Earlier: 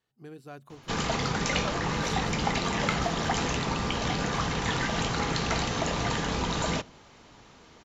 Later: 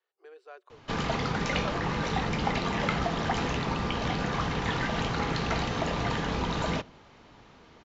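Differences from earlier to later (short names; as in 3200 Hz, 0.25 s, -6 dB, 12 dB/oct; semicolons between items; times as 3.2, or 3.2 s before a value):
speech: add rippled Chebyshev high-pass 360 Hz, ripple 3 dB; master: add air absorption 130 m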